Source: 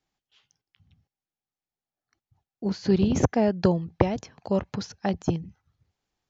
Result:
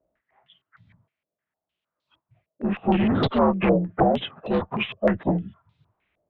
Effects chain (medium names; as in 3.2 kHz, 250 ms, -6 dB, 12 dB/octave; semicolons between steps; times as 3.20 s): frequency axis rescaled in octaves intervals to 82%; valve stage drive 25 dB, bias 0.3; step-sequenced low-pass 6.5 Hz 580–4000 Hz; trim +8 dB